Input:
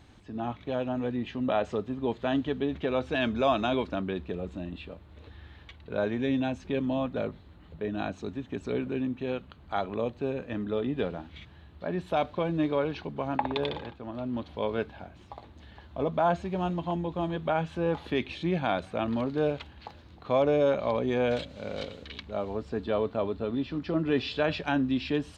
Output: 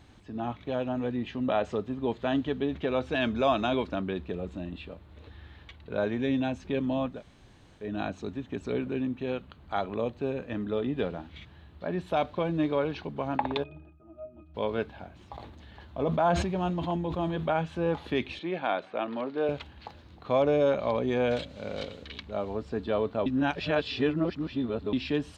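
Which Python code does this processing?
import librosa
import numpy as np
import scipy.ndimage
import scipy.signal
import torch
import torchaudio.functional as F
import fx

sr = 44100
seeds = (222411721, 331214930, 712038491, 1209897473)

y = fx.octave_resonator(x, sr, note='D#', decay_s=0.2, at=(13.62, 14.54), fade=0.02)
y = fx.sustainer(y, sr, db_per_s=42.0, at=(15.2, 17.51))
y = fx.bandpass_edges(y, sr, low_hz=330.0, high_hz=3600.0, at=(18.39, 19.49))
y = fx.edit(y, sr, fx.room_tone_fill(start_s=7.15, length_s=0.69, crossfade_s=0.16),
    fx.reverse_span(start_s=23.26, length_s=1.67), tone=tone)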